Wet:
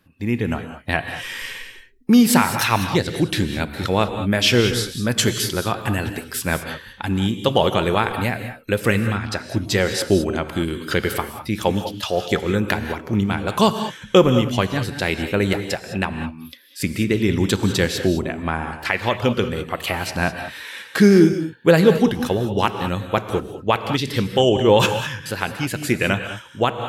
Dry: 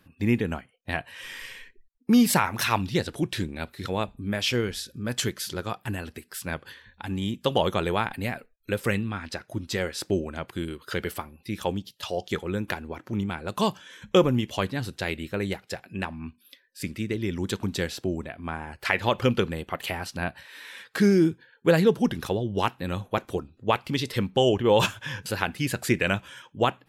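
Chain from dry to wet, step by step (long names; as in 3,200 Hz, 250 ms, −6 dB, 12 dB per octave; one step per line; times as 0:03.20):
automatic gain control
reverb whose tail is shaped and stops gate 230 ms rising, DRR 8 dB
level −1 dB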